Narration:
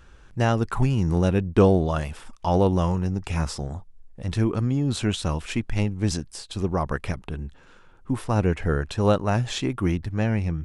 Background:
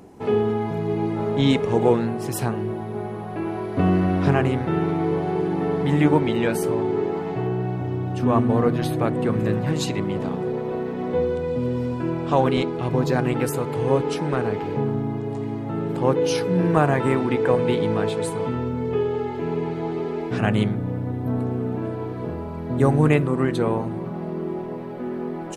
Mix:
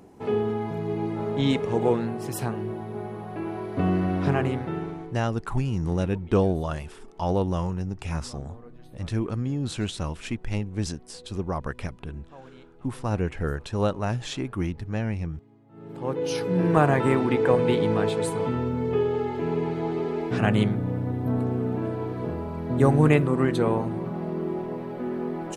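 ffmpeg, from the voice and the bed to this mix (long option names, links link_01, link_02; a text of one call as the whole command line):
ffmpeg -i stem1.wav -i stem2.wav -filter_complex "[0:a]adelay=4750,volume=-4.5dB[link_01];[1:a]volume=22.5dB,afade=type=out:start_time=4.49:duration=0.7:silence=0.0668344,afade=type=in:start_time=15.7:duration=1.1:silence=0.0446684[link_02];[link_01][link_02]amix=inputs=2:normalize=0" out.wav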